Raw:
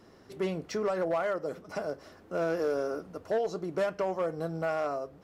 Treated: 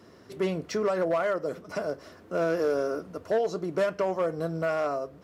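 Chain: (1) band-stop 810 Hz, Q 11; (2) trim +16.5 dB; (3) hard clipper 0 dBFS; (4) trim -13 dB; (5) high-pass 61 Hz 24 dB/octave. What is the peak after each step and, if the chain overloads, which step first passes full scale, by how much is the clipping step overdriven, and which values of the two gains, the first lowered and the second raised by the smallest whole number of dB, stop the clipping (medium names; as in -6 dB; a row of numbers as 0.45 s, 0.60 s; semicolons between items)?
-21.5 dBFS, -5.0 dBFS, -5.0 dBFS, -18.0 dBFS, -17.5 dBFS; nothing clips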